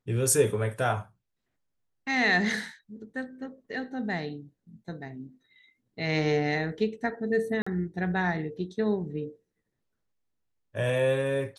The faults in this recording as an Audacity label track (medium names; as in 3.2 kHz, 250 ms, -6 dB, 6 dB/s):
7.620000	7.670000	dropout 45 ms